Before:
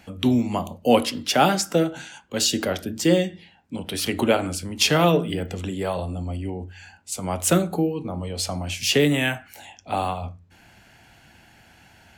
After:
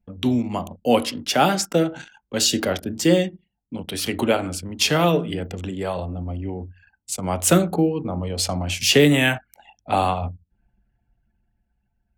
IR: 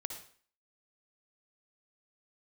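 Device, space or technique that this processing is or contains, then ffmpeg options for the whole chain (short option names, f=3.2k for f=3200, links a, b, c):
voice memo with heavy noise removal: -af "anlmdn=1.58,dynaudnorm=f=420:g=9:m=14dB,volume=-1dB"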